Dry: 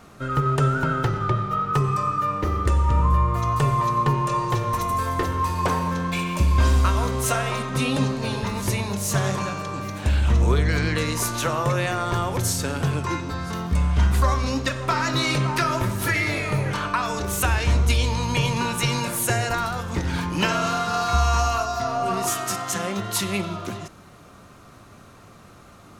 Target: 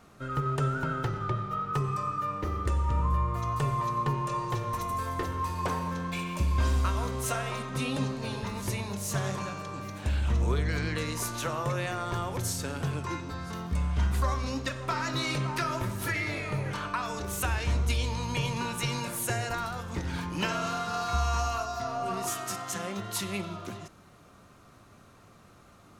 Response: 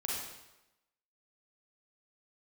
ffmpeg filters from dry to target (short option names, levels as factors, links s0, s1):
-filter_complex "[0:a]asettb=1/sr,asplit=3[s0][s1][s2];[s0]atrim=end=16.124[s3];[s1]atrim=start=16.12:end=16.65,asetpts=PTS-STARTPTS,afade=t=in:d=0.004:c=qsin,afade=t=out:st=0.526:d=0.004:c=qsin,highshelf=f=8300:g=-6[s4];[s2]atrim=start=16.646[s5];[s3][s4]acrossfade=d=0.004:c1=hsin:c2=qsin[s6];[s6][s5]acrossfade=d=0.004:c1=qsin:c2=hsin,volume=0.398"